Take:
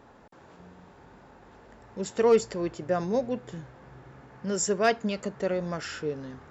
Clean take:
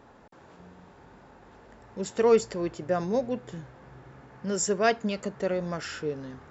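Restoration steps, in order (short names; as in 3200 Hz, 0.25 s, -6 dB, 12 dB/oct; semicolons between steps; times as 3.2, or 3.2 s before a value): clip repair -12 dBFS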